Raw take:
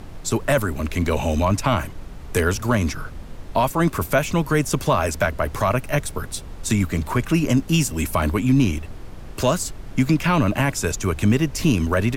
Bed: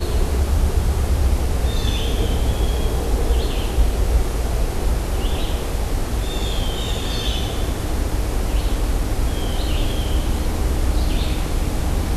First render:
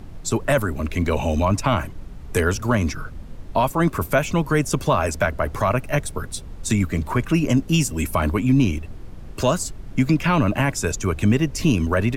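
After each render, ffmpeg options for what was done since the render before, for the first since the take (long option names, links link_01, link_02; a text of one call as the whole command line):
ffmpeg -i in.wav -af "afftdn=noise_reduction=6:noise_floor=-37" out.wav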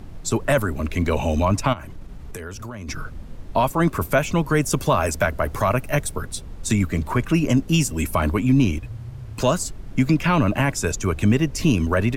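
ffmpeg -i in.wav -filter_complex "[0:a]asplit=3[link_01][link_02][link_03];[link_01]afade=type=out:start_time=1.72:duration=0.02[link_04];[link_02]acompressor=threshold=-30dB:ratio=10:attack=3.2:release=140:knee=1:detection=peak,afade=type=in:start_time=1.72:duration=0.02,afade=type=out:start_time=2.88:duration=0.02[link_05];[link_03]afade=type=in:start_time=2.88:duration=0.02[link_06];[link_04][link_05][link_06]amix=inputs=3:normalize=0,asettb=1/sr,asplit=3[link_07][link_08][link_09];[link_07]atrim=end=4.614[link_10];[link_08]atrim=start=4.61:end=6.16,asetpts=PTS-STARTPTS,afade=type=in:duration=0.004:curve=qsin,afade=type=out:start_time=1.546:duration=0.004:curve=qsin,highshelf=frequency=10000:gain=8[link_11];[link_09]atrim=start=6.156[link_12];[link_10][link_11]acrossfade=duration=0.004:curve1=hsin:curve2=qsin[link_13];[link_13][link_12]acrossfade=duration=0.004:curve1=qsin:curve2=hsin,asettb=1/sr,asplit=3[link_14][link_15][link_16];[link_14]atrim=end=8.804[link_17];[link_15]atrim=start=8.8:end=9.41,asetpts=PTS-STARTPTS,afade=type=in:duration=0.004:curve=qsin,afade=type=out:start_time=0.606:duration=0.004:curve=qsin,afreqshift=-130[link_18];[link_16]atrim=start=9.406[link_19];[link_17][link_18]acrossfade=duration=0.004:curve1=hsin:curve2=qsin[link_20];[link_20][link_19]acrossfade=duration=0.004:curve1=qsin:curve2=hsin" out.wav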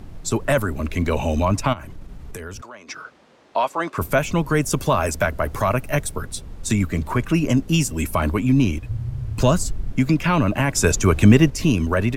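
ffmpeg -i in.wav -filter_complex "[0:a]asettb=1/sr,asplit=3[link_01][link_02][link_03];[link_01]atrim=end=2.614[link_04];[link_02]atrim=start=2.61:end=3.98,asetpts=PTS-STARTPTS,afade=type=in:duration=0.004:curve=qsin,afade=type=out:start_time=1.366:duration=0.004:curve=qsin,highpass=480,lowpass=6200[link_05];[link_03]atrim=start=3.976[link_06];[link_04][link_05]acrossfade=duration=0.004:curve1=hsin:curve2=qsin[link_07];[link_07][link_06]acrossfade=duration=0.004:curve1=qsin:curve2=hsin,asettb=1/sr,asplit=3[link_08][link_09][link_10];[link_08]atrim=end=8.894[link_11];[link_09]atrim=start=8.89:end=9.92,asetpts=PTS-STARTPTS,afade=type=in:duration=0.004:curve=qsin,afade=type=out:start_time=1.026:duration=0.004:curve=qsin,lowshelf=frequency=170:gain=10.5[link_12];[link_10]atrim=start=9.916[link_13];[link_11][link_12]acrossfade=duration=0.004:curve1=hsin:curve2=qsin[link_14];[link_14][link_13]acrossfade=duration=0.004:curve1=qsin:curve2=hsin,asplit=3[link_15][link_16][link_17];[link_15]atrim=end=10.752[link_18];[link_16]atrim=start=10.748:end=11.502,asetpts=PTS-STARTPTS,volume=6dB[link_19];[link_17]atrim=start=11.498[link_20];[link_18][link_19]acrossfade=duration=0.004:curve1=hsin:curve2=hsin[link_21];[link_21][link_20]acrossfade=duration=0.004:curve1=hsin:curve2=hsin" out.wav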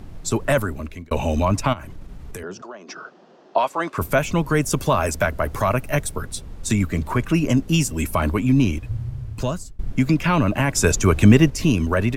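ffmpeg -i in.wav -filter_complex "[0:a]asettb=1/sr,asplit=3[link_01][link_02][link_03];[link_01]atrim=end=2.434[link_04];[link_02]atrim=start=2.43:end=3.58,asetpts=PTS-STARTPTS,afade=type=in:duration=0.004:curve=qsin,afade=type=out:start_time=1.146:duration=0.004:curve=qsin,highpass=frequency=150:width=0.5412,highpass=frequency=150:width=1.3066,equalizer=frequency=180:width_type=q:width=4:gain=7,equalizer=frequency=370:width_type=q:width=4:gain=9,equalizer=frequency=700:width_type=q:width=4:gain=7,equalizer=frequency=2200:width_type=q:width=4:gain=-9,equalizer=frequency=3800:width_type=q:width=4:gain=-4,lowpass=frequency=6200:width=0.5412,lowpass=frequency=6200:width=1.3066[link_05];[link_03]atrim=start=3.576[link_06];[link_04][link_05]acrossfade=duration=0.004:curve1=hsin:curve2=qsin[link_07];[link_07][link_06]acrossfade=duration=0.004:curve1=qsin:curve2=hsin,asplit=3[link_08][link_09][link_10];[link_08]atrim=end=1.11,asetpts=PTS-STARTPTS,afade=type=out:start_time=0.58:duration=0.53[link_11];[link_09]atrim=start=1.11:end=9.79,asetpts=PTS-STARTPTS,afade=type=in:duration=0.004:curve=hsin,afade=type=out:start_time=7.83:duration=0.85:silence=0.0749894[link_12];[link_10]atrim=start=9.79,asetpts=PTS-STARTPTS,afade=type=in:duration=0.004:curve=hsin:silence=0.0749894[link_13];[link_11][link_12][link_13]concat=n=3:v=0:a=1" out.wav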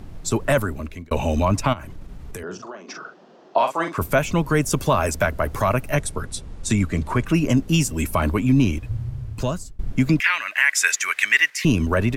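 ffmpeg -i in.wav -filter_complex "[0:a]asettb=1/sr,asplit=3[link_01][link_02][link_03];[link_01]atrim=end=2.434[link_04];[link_02]atrim=start=2.43:end=3.94,asetpts=PTS-STARTPTS,afade=type=in:duration=0.004:curve=qsin,afade=type=out:start_time=1.506:duration=0.004:curve=qsin,asplit=2[link_05][link_06];[link_06]adelay=43,volume=-7dB[link_07];[link_05][link_07]amix=inputs=2:normalize=0,atrim=end_sample=66591[link_08];[link_03]atrim=start=3.936[link_09];[link_04][link_08]acrossfade=duration=0.004:curve1=hsin:curve2=qsin[link_10];[link_10][link_09]acrossfade=duration=0.004:curve1=qsin:curve2=hsin,asettb=1/sr,asplit=3[link_11][link_12][link_13];[link_11]atrim=end=5.944[link_14];[link_12]atrim=start=5.94:end=7.26,asetpts=PTS-STARTPTS,afade=type=in:duration=0.004:curve=qsin,afade=type=out:start_time=1.316:duration=0.004:curve=qsin,lowpass=frequency=11000:width=0.5412,lowpass=frequency=11000:width=1.3066[link_15];[link_13]atrim=start=7.256[link_16];[link_14][link_15]acrossfade=duration=0.004:curve1=hsin:curve2=qsin[link_17];[link_17][link_16]acrossfade=duration=0.004:curve1=qsin:curve2=hsin,asettb=1/sr,asplit=3[link_18][link_19][link_20];[link_18]atrim=end=10.204[link_21];[link_19]atrim=start=10.2:end=11.65,asetpts=PTS-STARTPTS,afade=type=in:duration=0.004:curve=qsin,afade=type=out:start_time=1.446:duration=0.004:curve=qsin,highpass=frequency=1900:width_type=q:width=4.9[link_22];[link_20]atrim=start=11.646[link_23];[link_21][link_22]acrossfade=duration=0.004:curve1=hsin:curve2=qsin[link_24];[link_24][link_23]acrossfade=duration=0.004:curve1=qsin:curve2=hsin" out.wav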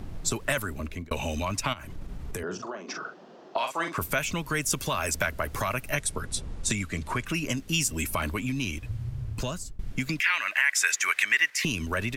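ffmpeg -i in.wav -filter_complex "[0:a]acrossover=split=1600[link_01][link_02];[link_01]acompressor=threshold=-29dB:ratio=6[link_03];[link_02]alimiter=limit=-14dB:level=0:latency=1:release=182[link_04];[link_03][link_04]amix=inputs=2:normalize=0" out.wav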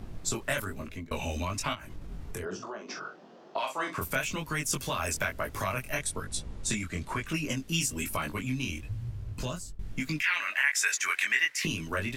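ffmpeg -i in.wav -af "flanger=delay=18.5:depth=5.1:speed=1.1" out.wav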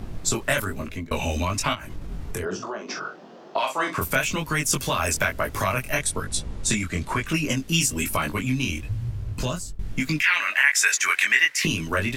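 ffmpeg -i in.wav -af "volume=7.5dB" out.wav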